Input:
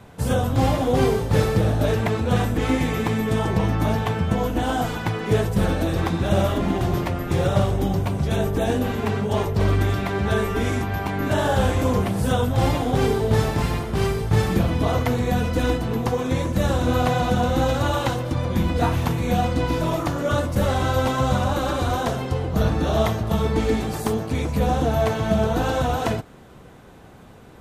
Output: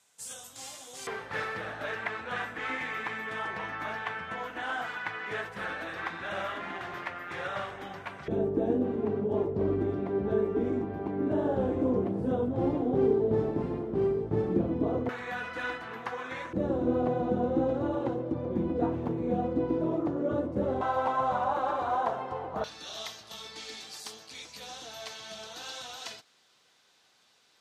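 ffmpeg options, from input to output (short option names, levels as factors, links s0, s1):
-af "asetnsamples=n=441:p=0,asendcmd='1.07 bandpass f 1700;8.28 bandpass f 340;15.09 bandpass f 1600;16.53 bandpass f 360;20.81 bandpass f 890;22.64 bandpass f 4800',bandpass=f=7400:t=q:w=2:csg=0"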